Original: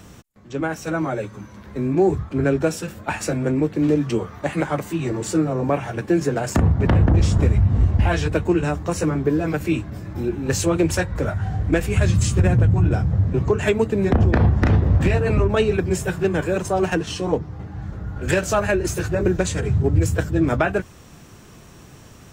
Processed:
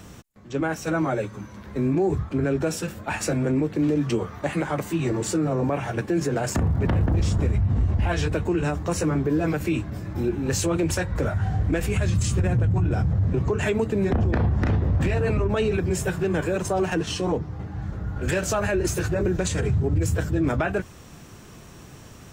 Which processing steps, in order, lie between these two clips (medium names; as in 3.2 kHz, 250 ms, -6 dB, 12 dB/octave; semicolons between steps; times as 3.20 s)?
peak limiter -15 dBFS, peak gain reduction 6.5 dB; 6.56–7.40 s: crackle 120 per s -43 dBFS